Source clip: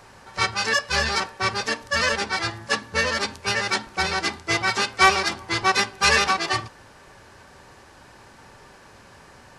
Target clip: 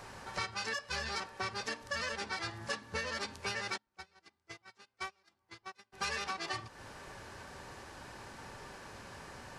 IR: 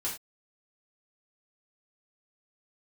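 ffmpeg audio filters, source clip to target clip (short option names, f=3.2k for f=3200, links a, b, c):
-filter_complex "[0:a]acompressor=threshold=-35dB:ratio=6,asplit=3[a][b][c];[a]afade=t=out:st=3.76:d=0.02[d];[b]agate=range=-32dB:threshold=-32dB:ratio=16:detection=peak,afade=t=in:st=3.76:d=0.02,afade=t=out:st=5.92:d=0.02[e];[c]afade=t=in:st=5.92:d=0.02[f];[d][e][f]amix=inputs=3:normalize=0,volume=-1dB"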